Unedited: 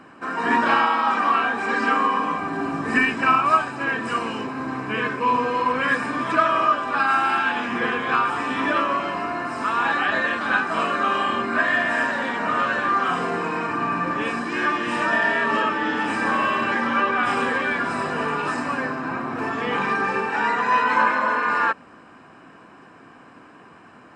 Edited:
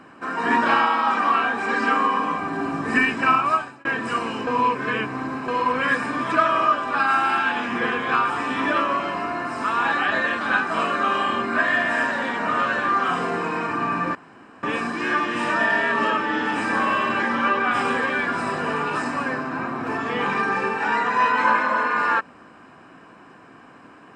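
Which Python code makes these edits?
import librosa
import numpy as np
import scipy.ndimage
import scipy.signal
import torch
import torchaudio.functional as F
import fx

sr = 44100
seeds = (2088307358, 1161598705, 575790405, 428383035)

y = fx.edit(x, sr, fx.fade_out_span(start_s=3.22, length_s=0.63, curve='qsin'),
    fx.reverse_span(start_s=4.47, length_s=1.01),
    fx.insert_room_tone(at_s=14.15, length_s=0.48), tone=tone)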